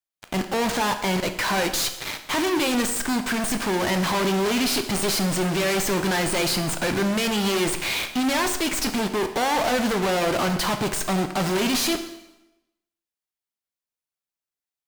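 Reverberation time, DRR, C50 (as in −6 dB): 0.95 s, 7.0 dB, 10.0 dB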